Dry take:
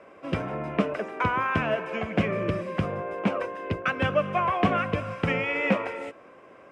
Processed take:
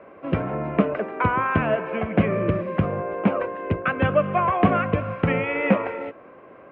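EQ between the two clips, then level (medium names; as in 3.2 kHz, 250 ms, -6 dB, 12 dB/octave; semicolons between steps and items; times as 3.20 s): distance through air 490 m; +6.0 dB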